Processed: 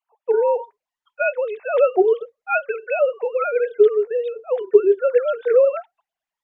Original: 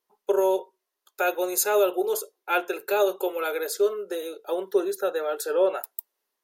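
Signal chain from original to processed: formants replaced by sine waves; trim +6.5 dB; Opus 48 kbps 48 kHz

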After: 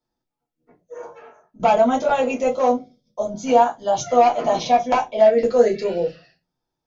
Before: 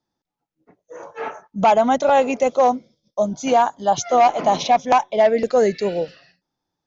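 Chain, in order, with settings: 1.15–1.60 s: compression 8:1, threshold -40 dBFS, peak gain reduction 16 dB; reverberation, pre-delay 3 ms, DRR -3.5 dB; trim -7.5 dB

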